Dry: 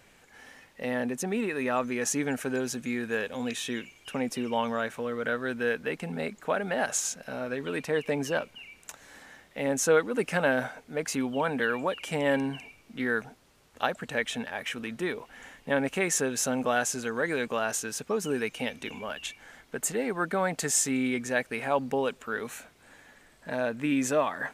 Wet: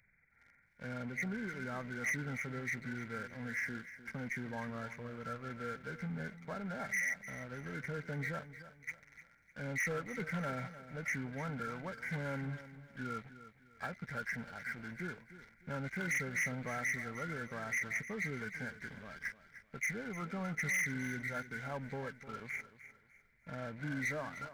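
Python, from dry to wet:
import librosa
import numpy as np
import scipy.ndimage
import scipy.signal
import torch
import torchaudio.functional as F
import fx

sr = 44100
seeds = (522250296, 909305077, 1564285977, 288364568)

y = fx.freq_compress(x, sr, knee_hz=1300.0, ratio=4.0)
y = fx.band_shelf(y, sr, hz=600.0, db=-15.5, octaves=2.9)
y = fx.leveller(y, sr, passes=2)
y = 10.0 ** (-25.5 / 20.0) * np.tanh(y / 10.0 ** (-25.5 / 20.0))
y = fx.echo_crushed(y, sr, ms=303, feedback_pct=35, bits=11, wet_db=-14)
y = y * librosa.db_to_amplitude(-6.5)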